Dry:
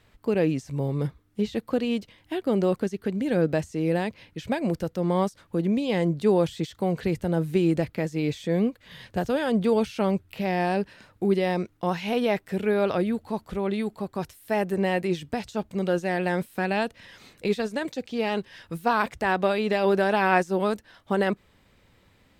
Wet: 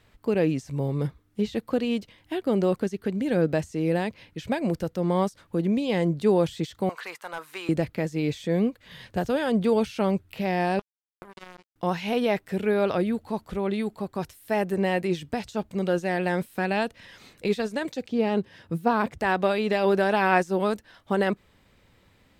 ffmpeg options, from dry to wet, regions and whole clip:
ffmpeg -i in.wav -filter_complex "[0:a]asettb=1/sr,asplit=3[link_01][link_02][link_03];[link_01]atrim=end=6.894[link_04];[link_02]atrim=start=6.89:end=7.69,asetpts=PTS-STARTPTS,afade=type=in:duration=0.004:curve=qsin,afade=type=out:start_time=0.796:duration=0.004:curve=qsin,highpass=frequency=1100:width_type=q:width=3.2,asoftclip=type=hard:threshold=-26dB[link_05];[link_03]atrim=start=7.686[link_06];[link_04][link_05]acrossfade=duration=0.004:curve1=hsin:curve2=qsin[link_07];[link_07][link_06]acrossfade=duration=0.004:curve1=qsin:curve2=hsin,asettb=1/sr,asplit=3[link_08][link_09][link_10];[link_08]atrim=end=10.794[link_11];[link_09]atrim=start=10.79:end=11.76,asetpts=PTS-STARTPTS,afade=type=in:duration=0.004:curve=qsin,afade=type=out:start_time=0.966:duration=0.004:curve=qsin,acompressor=threshold=-28dB:ratio=16:attack=3.2:release=140:knee=1:detection=peak,acrusher=bits=3:mix=0:aa=0.5[link_12];[link_10]atrim=start=11.756[link_13];[link_11][link_12]acrossfade=duration=0.004:curve1=hsin:curve2=qsin[link_14];[link_14][link_13]acrossfade=duration=0.004:curve1=qsin:curve2=hsin,asettb=1/sr,asplit=3[link_15][link_16][link_17];[link_15]atrim=end=18.084[link_18];[link_16]atrim=start=18.08:end=19.19,asetpts=PTS-STARTPTS,afade=type=in:duration=0.004:curve=qsin,afade=type=out:start_time=1.106:duration=0.004:curve=qsin,highpass=76,tiltshelf=frequency=730:gain=6[link_19];[link_17]atrim=start=19.186[link_20];[link_18][link_19]acrossfade=duration=0.004:curve1=hsin:curve2=qsin[link_21];[link_21][link_20]acrossfade=duration=0.004:curve1=qsin:curve2=hsin" out.wav

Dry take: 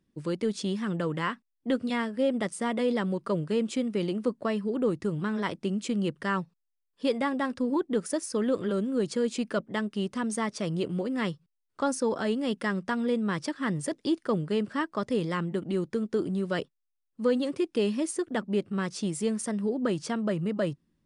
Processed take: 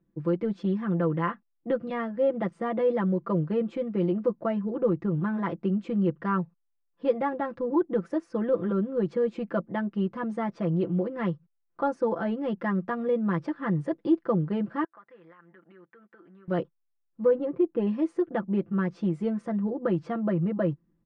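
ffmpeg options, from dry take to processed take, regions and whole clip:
ffmpeg -i in.wav -filter_complex "[0:a]asettb=1/sr,asplit=3[link_01][link_02][link_03];[link_01]atrim=end=14.844[link_04];[link_02]atrim=start=14.84:end=16.48,asetpts=PTS-STARTPTS,afade=type=in:duration=0.004:curve=qsin,afade=type=out:start_time=1.636:duration=0.004:curve=qsin,bandpass=frequency=1700:width_type=q:width=2.7,acompressor=threshold=-52dB:ratio=2.5:attack=3.2:release=140:knee=1:detection=peak[link_05];[link_03]atrim=start=16.476[link_06];[link_04][link_05]acrossfade=duration=0.004:curve1=hsin:curve2=qsin[link_07];[link_07][link_06]acrossfade=duration=0.004:curve1=qsin:curve2=hsin,asettb=1/sr,asplit=3[link_08][link_09][link_10];[link_08]atrim=end=17.254[link_11];[link_09]atrim=start=17.25:end=17.87,asetpts=PTS-STARTPTS,afade=type=in:duration=0.004:curve=qsin,afade=type=out:start_time=0.616:duration=0.004:curve=qsin,adynamicsmooth=sensitivity=5:basefreq=2600,highshelf=frequency=2900:gain=-9[link_12];[link_10]atrim=start=17.866[link_13];[link_11][link_12]acrossfade=duration=0.004:curve1=hsin:curve2=qsin[link_14];[link_14][link_13]acrossfade=duration=0.004:curve1=qsin:curve2=hsin,lowpass=1400,aecho=1:1:5.9:0.8" out.wav

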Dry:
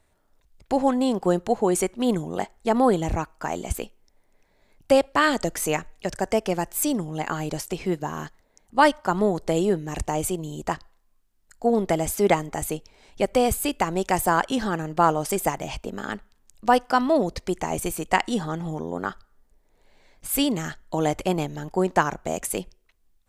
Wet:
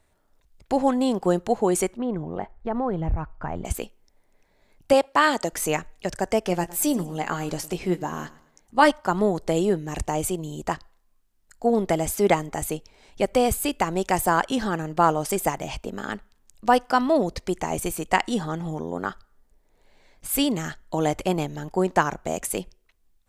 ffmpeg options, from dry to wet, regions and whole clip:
ffmpeg -i in.wav -filter_complex "[0:a]asettb=1/sr,asplit=3[link_01][link_02][link_03];[link_01]atrim=end=1.974[link_04];[link_02]atrim=start=1.97:end=3.65,asetpts=PTS-STARTPTS,afade=type=in:duration=0.004:curve=qsin,afade=type=out:start_time=1.676:duration=0.004:curve=qsin,lowpass=1600,asubboost=boost=11:cutoff=130,acompressor=threshold=-25dB:ratio=2:attack=3.2:release=140:knee=1:detection=peak[link_05];[link_03]atrim=start=3.646[link_06];[link_04][link_05]acrossfade=duration=0.004:curve1=hsin:curve2=qsin[link_07];[link_07][link_06]acrossfade=duration=0.004:curve1=qsin:curve2=hsin,asettb=1/sr,asplit=3[link_08][link_09][link_10];[link_08]atrim=end=4.934[link_11];[link_09]atrim=start=4.93:end=5.53,asetpts=PTS-STARTPTS,afade=type=in:duration=0.004:curve=qsin,afade=type=out:start_time=0.596:duration=0.004:curve=qsin,highpass=frequency=250:poles=1,equalizer=frequency=930:width_type=o:width=0.49:gain=5[link_12];[link_10]atrim=start=5.526[link_13];[link_11][link_12]acrossfade=duration=0.004:curve1=hsin:curve2=qsin[link_14];[link_14][link_13]acrossfade=duration=0.004:curve1=qsin:curve2=hsin,asettb=1/sr,asplit=3[link_15][link_16][link_17];[link_15]atrim=end=6.454[link_18];[link_16]atrim=start=6.45:end=8.91,asetpts=PTS-STARTPTS,afade=type=in:duration=0.004:curve=qsin,afade=type=out:start_time=2.456:duration=0.004:curve=qsin,asplit=2[link_19][link_20];[link_20]adelay=17,volume=-10.5dB[link_21];[link_19][link_21]amix=inputs=2:normalize=0,atrim=end_sample=108486,aecho=1:1:111|222|333:0.112|0.0404|0.0145,atrim=end_sample=108486[link_22];[link_17]atrim=start=8.906[link_23];[link_18][link_22]acrossfade=duration=0.004:curve1=hsin:curve2=qsin[link_24];[link_24][link_23]acrossfade=duration=0.004:curve1=qsin:curve2=hsin" out.wav

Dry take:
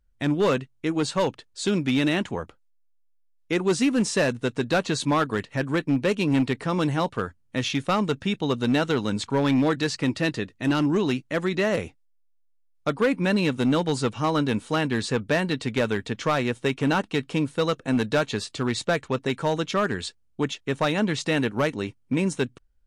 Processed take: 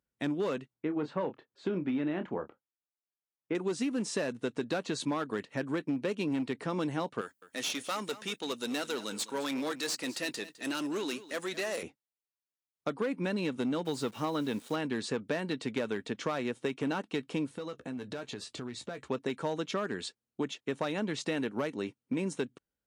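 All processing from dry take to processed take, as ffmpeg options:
ffmpeg -i in.wav -filter_complex "[0:a]asettb=1/sr,asplit=3[link_01][link_02][link_03];[link_01]atrim=end=0.744[link_04];[link_02]atrim=start=0.74:end=3.55,asetpts=PTS-STARTPTS,afade=type=in:duration=0.004:curve=qsin,afade=type=out:start_time=2.806:duration=0.004:curve=qsin,lowpass=1800,asplit=2[link_05][link_06];[link_06]adelay=27,volume=-10dB[link_07];[link_05][link_07]amix=inputs=2:normalize=0,atrim=end_sample=123921[link_08];[link_03]atrim=start=3.546[link_09];[link_04][link_08]acrossfade=duration=0.004:curve1=hsin:curve2=qsin[link_10];[link_10][link_09]acrossfade=duration=0.004:curve1=qsin:curve2=hsin,asettb=1/sr,asplit=3[link_11][link_12][link_13];[link_11]atrim=end=7.214[link_14];[link_12]atrim=start=7.21:end=11.83,asetpts=PTS-STARTPTS,afade=type=in:duration=0.004:curve=qsin,afade=type=out:start_time=4.616:duration=0.004:curve=qsin,aemphasis=mode=production:type=riaa,aeval=exprs='(tanh(11.2*val(0)+0.45)-tanh(0.45))/11.2':channel_layout=same,aecho=1:1:208:0.15,atrim=end_sample=203742[link_15];[link_13]atrim=start=11.826[link_16];[link_14][link_15]acrossfade=duration=0.004:curve1=hsin:curve2=qsin[link_17];[link_17][link_16]acrossfade=duration=0.004:curve1=qsin:curve2=hsin,asettb=1/sr,asplit=3[link_18][link_19][link_20];[link_18]atrim=end=13.854[link_21];[link_19]atrim=start=13.85:end=14.76,asetpts=PTS-STARTPTS,afade=type=in:duration=0.004:curve=qsin,afade=type=out:start_time=0.906:duration=0.004:curve=qsin,equalizer=frequency=3700:width_type=o:width=0.23:gain=4.5,acrusher=bits=8:dc=4:mix=0:aa=0.000001[link_22];[link_20]atrim=start=14.756[link_23];[link_21][link_22]acrossfade=duration=0.004:curve1=hsin:curve2=qsin[link_24];[link_24][link_23]acrossfade=duration=0.004:curve1=qsin:curve2=hsin,asettb=1/sr,asplit=3[link_25][link_26][link_27];[link_25]atrim=end=17.504[link_28];[link_26]atrim=start=17.5:end=19.09,asetpts=PTS-STARTPTS,afade=type=in:duration=0.004:curve=qsin,afade=type=out:start_time=1.586:duration=0.004:curve=qsin,asplit=2[link_29][link_30];[link_30]adelay=16,volume=-10.5dB[link_31];[link_29][link_31]amix=inputs=2:normalize=0,atrim=end_sample=70119,acompressor=threshold=-31dB:ratio=16:attack=3.2:release=140:knee=1:detection=peak,equalizer=frequency=75:width_type=o:width=0.99:gain=13[link_32];[link_27]atrim=start=19.086[link_33];[link_28][link_32]acrossfade=duration=0.004:curve1=hsin:curve2=qsin[link_34];[link_34][link_33]acrossfade=duration=0.004:curve1=qsin:curve2=hsin,highpass=270,lowshelf=frequency=360:gain=9,acompressor=threshold=-22dB:ratio=6,volume=-6.5dB" out.wav

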